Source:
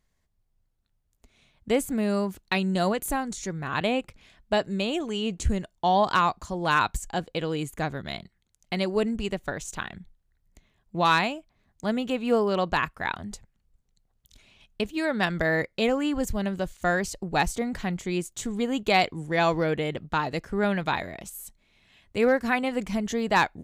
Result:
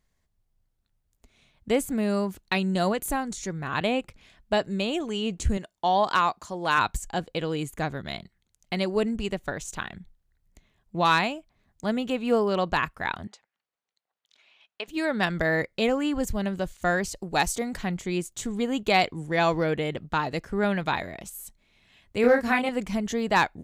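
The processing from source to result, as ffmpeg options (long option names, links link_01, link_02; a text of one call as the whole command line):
ffmpeg -i in.wav -filter_complex "[0:a]asettb=1/sr,asplit=3[link_01][link_02][link_03];[link_01]atrim=end=5.574[link_04];[link_02]atrim=start=5.57:end=6.78,asetpts=PTS-STARTPTS,afade=type=in:duration=0.004:curve=qsin,afade=type=out:start_time=1.206:duration=0.004:curve=qsin,highpass=frequency=290:poles=1[link_05];[link_03]atrim=start=6.776[link_06];[link_04][link_05]acrossfade=duration=0.004:curve1=hsin:curve2=qsin[link_07];[link_07][link_06]acrossfade=duration=0.004:curve1=qsin:curve2=hsin,asettb=1/sr,asplit=3[link_08][link_09][link_10];[link_08]atrim=end=13.274[link_11];[link_09]atrim=start=13.27:end=14.88,asetpts=PTS-STARTPTS,afade=type=in:duration=0.004:curve=qsin,afade=type=out:start_time=1.606:duration=0.004:curve=qsin,highpass=730,lowpass=3900[link_12];[link_10]atrim=start=14.876[link_13];[link_11][link_12]acrossfade=duration=0.004:curve1=hsin:curve2=qsin[link_14];[link_14][link_13]acrossfade=duration=0.004:curve1=qsin:curve2=hsin,asettb=1/sr,asplit=3[link_15][link_16][link_17];[link_15]atrim=end=17.164[link_18];[link_16]atrim=start=17.16:end=17.77,asetpts=PTS-STARTPTS,afade=type=in:duration=0.004:curve=qsin,afade=type=out:start_time=0.606:duration=0.004:curve=qsin,bass=frequency=250:gain=-4,treble=frequency=4000:gain=6[link_19];[link_17]atrim=start=17.766[link_20];[link_18][link_19]acrossfade=duration=0.004:curve1=hsin:curve2=qsin[link_21];[link_21][link_20]acrossfade=duration=0.004:curve1=qsin:curve2=hsin,asettb=1/sr,asplit=3[link_22][link_23][link_24];[link_22]atrim=end=22.214[link_25];[link_23]atrim=start=22.21:end=22.69,asetpts=PTS-STARTPTS,afade=type=in:duration=0.004:curve=qsin,afade=type=out:start_time=0.476:duration=0.004:curve=qsin,asplit=2[link_26][link_27];[link_27]adelay=29,volume=-3dB[link_28];[link_26][link_28]amix=inputs=2:normalize=0,atrim=end_sample=21168[link_29];[link_24]atrim=start=22.686[link_30];[link_25][link_29]acrossfade=duration=0.004:curve1=hsin:curve2=qsin[link_31];[link_31][link_30]acrossfade=duration=0.004:curve1=qsin:curve2=hsin" out.wav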